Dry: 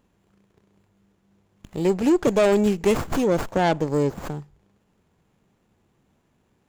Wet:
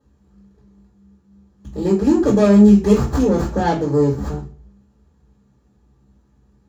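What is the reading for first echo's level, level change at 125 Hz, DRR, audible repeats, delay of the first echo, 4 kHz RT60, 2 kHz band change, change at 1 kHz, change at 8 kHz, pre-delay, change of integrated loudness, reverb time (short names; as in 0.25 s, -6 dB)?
none, +9.0 dB, -9.0 dB, none, none, 0.35 s, -1.5 dB, +2.5 dB, n/a, 3 ms, +6.5 dB, 0.45 s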